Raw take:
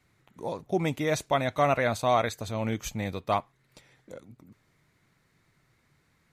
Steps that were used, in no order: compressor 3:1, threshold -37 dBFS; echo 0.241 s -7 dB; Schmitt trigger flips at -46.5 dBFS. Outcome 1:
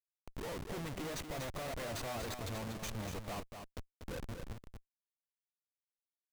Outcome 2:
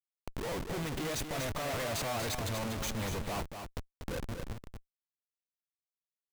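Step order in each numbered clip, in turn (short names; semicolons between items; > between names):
compressor > Schmitt trigger > echo; Schmitt trigger > compressor > echo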